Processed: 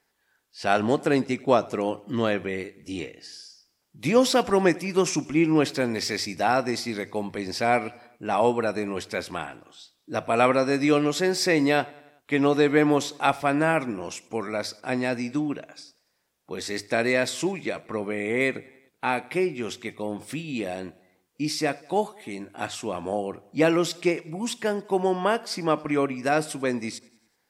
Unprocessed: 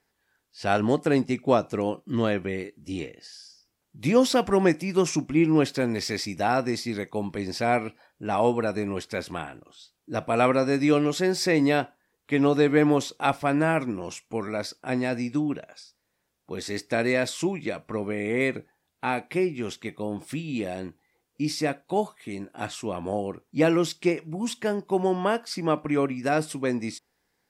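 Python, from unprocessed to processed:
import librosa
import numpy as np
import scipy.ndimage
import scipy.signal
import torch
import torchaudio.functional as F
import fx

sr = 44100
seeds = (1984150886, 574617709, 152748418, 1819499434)

p1 = fx.low_shelf(x, sr, hz=300.0, db=-6.0)
p2 = fx.hum_notches(p1, sr, base_hz=50, count=2)
p3 = p2 + fx.echo_feedback(p2, sr, ms=95, feedback_pct=58, wet_db=-23.5, dry=0)
y = F.gain(torch.from_numpy(p3), 2.5).numpy()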